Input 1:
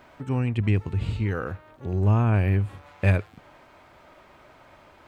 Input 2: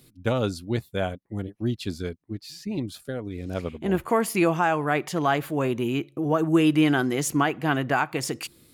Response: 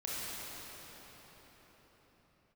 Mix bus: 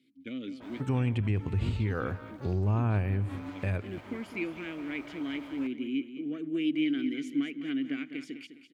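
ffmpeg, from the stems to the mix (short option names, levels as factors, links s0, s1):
-filter_complex "[0:a]highpass=42,alimiter=limit=0.158:level=0:latency=1:release=237,adynamicequalizer=threshold=0.00631:dfrequency=2300:dqfactor=0.7:tfrequency=2300:tqfactor=0.7:attack=5:release=100:ratio=0.375:range=1.5:mode=cutabove:tftype=highshelf,adelay=600,volume=1.19,asplit=2[s0][s1];[s1]volume=0.1[s2];[1:a]lowshelf=f=130:g=-10.5,aeval=exprs='0.355*(cos(1*acos(clip(val(0)/0.355,-1,1)))-cos(1*PI/2))+0.0562*(cos(2*acos(clip(val(0)/0.355,-1,1)))-cos(2*PI/2))':c=same,asplit=3[s3][s4][s5];[s3]bandpass=f=270:t=q:w=8,volume=1[s6];[s4]bandpass=f=2290:t=q:w=8,volume=0.501[s7];[s5]bandpass=f=3010:t=q:w=8,volume=0.355[s8];[s6][s7][s8]amix=inputs=3:normalize=0,volume=1.12,asplit=2[s9][s10];[s10]volume=0.282[s11];[s2][s11]amix=inputs=2:normalize=0,aecho=0:1:205|410|615|820|1025:1|0.33|0.109|0.0359|0.0119[s12];[s0][s9][s12]amix=inputs=3:normalize=0,alimiter=limit=0.0944:level=0:latency=1:release=189"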